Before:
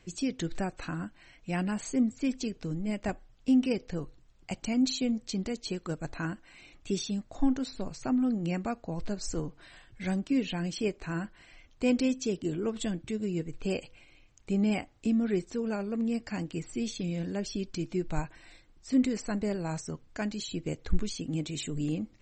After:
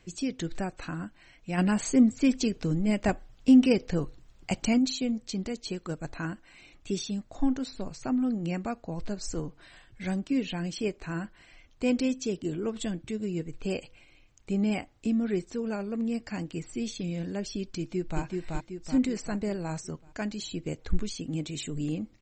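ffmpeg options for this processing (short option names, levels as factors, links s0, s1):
-filter_complex "[0:a]asplit=3[s0][s1][s2];[s0]afade=t=out:st=1.57:d=0.02[s3];[s1]acontrast=63,afade=t=in:st=1.57:d=0.02,afade=t=out:st=4.77:d=0.02[s4];[s2]afade=t=in:st=4.77:d=0.02[s5];[s3][s4][s5]amix=inputs=3:normalize=0,asplit=2[s6][s7];[s7]afade=t=in:st=17.78:d=0.01,afade=t=out:st=18.22:d=0.01,aecho=0:1:380|760|1140|1520|1900|2280|2660:0.749894|0.374947|0.187474|0.0937368|0.0468684|0.0234342|0.0117171[s8];[s6][s8]amix=inputs=2:normalize=0"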